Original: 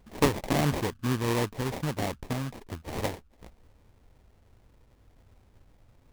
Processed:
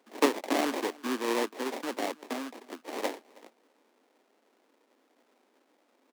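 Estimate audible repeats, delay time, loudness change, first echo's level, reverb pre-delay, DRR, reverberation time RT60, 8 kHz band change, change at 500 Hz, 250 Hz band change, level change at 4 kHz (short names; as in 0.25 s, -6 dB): 1, 0.32 s, -2.0 dB, -23.5 dB, none, none, none, -1.5 dB, 0.0 dB, -2.0 dB, -0.5 dB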